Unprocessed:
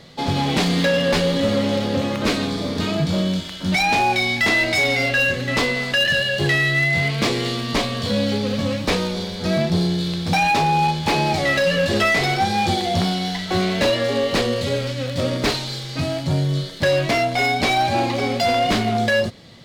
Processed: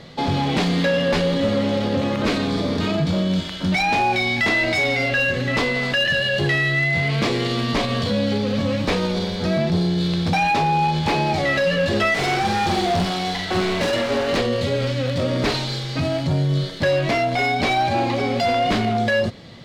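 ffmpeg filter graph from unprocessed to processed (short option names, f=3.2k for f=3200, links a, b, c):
-filter_complex "[0:a]asettb=1/sr,asplit=3[a][b][c];[a]atrim=end=12.144[d];[b]atrim=start=12.14:end=14.37,asetpts=PTS-STARTPTS,afade=t=in:d=0.004:c=qsin,afade=t=out:st=2.226:d=0.004:c=qsin,asoftclip=type=hard:threshold=-23dB,asplit=2[e][f];[f]adelay=46,volume=-6dB[g];[e][g]amix=inputs=2:normalize=0,atrim=end_sample=98343[h];[c]atrim=start=14.366[i];[d][h]acrossfade=d=0.004:c1=hsin:c2=qsin[j];[j][i]acrossfade=d=0.004:c1=qsin:c2=hsin,lowpass=f=3.8k:p=1,alimiter=limit=-17.5dB:level=0:latency=1:release=50,volume=4dB"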